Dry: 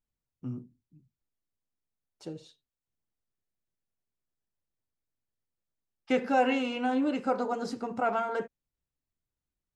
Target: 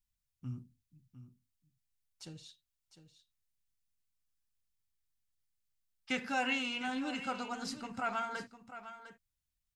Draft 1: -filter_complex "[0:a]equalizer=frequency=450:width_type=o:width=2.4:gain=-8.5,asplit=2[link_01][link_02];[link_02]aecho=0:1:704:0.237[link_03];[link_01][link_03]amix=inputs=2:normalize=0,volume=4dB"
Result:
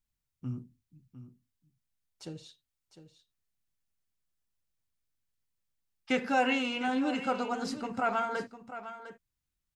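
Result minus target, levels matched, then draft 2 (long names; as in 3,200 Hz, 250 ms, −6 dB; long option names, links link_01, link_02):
500 Hz band +4.5 dB
-filter_complex "[0:a]equalizer=frequency=450:width_type=o:width=2.4:gain=-20,asplit=2[link_01][link_02];[link_02]aecho=0:1:704:0.237[link_03];[link_01][link_03]amix=inputs=2:normalize=0,volume=4dB"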